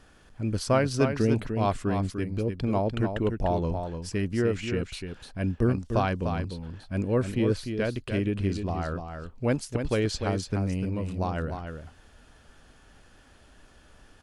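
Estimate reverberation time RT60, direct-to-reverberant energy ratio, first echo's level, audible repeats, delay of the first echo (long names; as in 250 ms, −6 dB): no reverb audible, no reverb audible, −7.0 dB, 1, 298 ms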